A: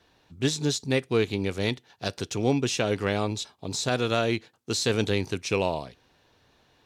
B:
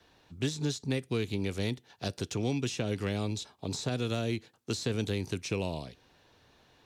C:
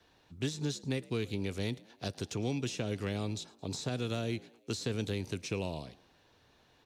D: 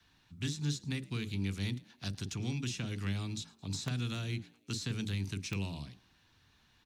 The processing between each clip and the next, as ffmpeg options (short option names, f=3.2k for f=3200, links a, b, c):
-filter_complex "[0:a]acrossover=split=280|740|2100|7100[a][b][c][d][e];[a]acompressor=threshold=-30dB:ratio=4[f];[b]acompressor=threshold=-38dB:ratio=4[g];[c]acompressor=threshold=-49dB:ratio=4[h];[d]acompressor=threshold=-41dB:ratio=4[i];[e]acompressor=threshold=-49dB:ratio=4[j];[f][g][h][i][j]amix=inputs=5:normalize=0"
-filter_complex "[0:a]asplit=4[a][b][c][d];[b]adelay=109,afreqshift=59,volume=-23dB[e];[c]adelay=218,afreqshift=118,volume=-29dB[f];[d]adelay=327,afreqshift=177,volume=-35dB[g];[a][e][f][g]amix=inputs=4:normalize=0,volume=-3dB"
-filter_complex "[0:a]acrossover=split=290|880[a][b][c];[a]asplit=2[d][e];[e]adelay=41,volume=-3.5dB[f];[d][f]amix=inputs=2:normalize=0[g];[b]acrusher=bits=4:mix=0:aa=0.000001[h];[g][h][c]amix=inputs=3:normalize=0"